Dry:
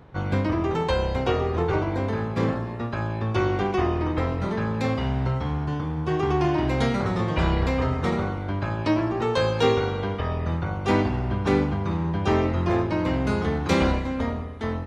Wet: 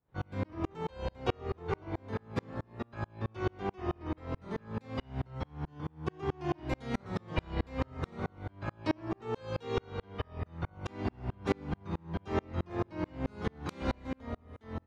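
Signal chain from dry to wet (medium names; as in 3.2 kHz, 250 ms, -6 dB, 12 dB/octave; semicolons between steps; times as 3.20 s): sawtooth tremolo in dB swelling 4.6 Hz, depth 37 dB; trim -3.5 dB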